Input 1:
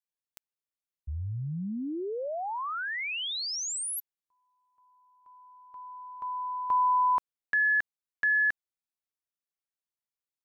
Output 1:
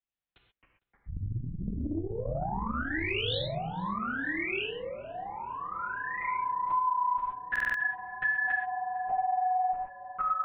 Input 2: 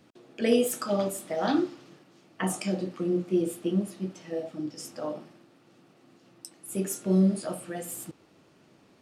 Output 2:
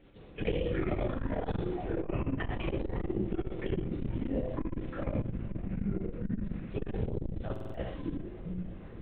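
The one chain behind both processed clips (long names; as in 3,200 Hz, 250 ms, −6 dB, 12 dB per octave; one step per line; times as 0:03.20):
parametric band 1,200 Hz −2 dB
linear-prediction vocoder at 8 kHz whisper
notch filter 1,100 Hz, Q 16
delay with pitch and tempo change per echo 147 ms, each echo −5 semitones, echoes 2
feedback echo with a low-pass in the loop 455 ms, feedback 82%, low-pass 2,100 Hz, level −21.5 dB
reverb whose tail is shaped and stops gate 150 ms flat, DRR 1 dB
downward compressor 10 to 1, threshold −25 dBFS
buffer that repeats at 0:07.51, samples 2,048, times 4
saturating transformer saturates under 140 Hz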